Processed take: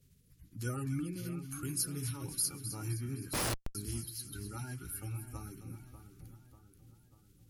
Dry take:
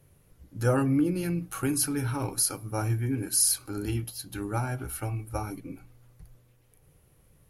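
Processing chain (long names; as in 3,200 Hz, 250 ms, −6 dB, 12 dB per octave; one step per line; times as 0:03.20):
spectral magnitudes quantised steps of 30 dB
low-shelf EQ 64 Hz −8.5 dB
in parallel at −2 dB: downward compressor 6 to 1, threshold −40 dBFS, peak gain reduction 18 dB
on the sum: guitar amp tone stack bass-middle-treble 6-0-2
on a send: echo with a time of its own for lows and highs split 1,400 Hz, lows 592 ms, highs 259 ms, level −10.5 dB
0:03.33–0:03.75: on the sum: comparator with hysteresis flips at −35.5 dBFS
level +7 dB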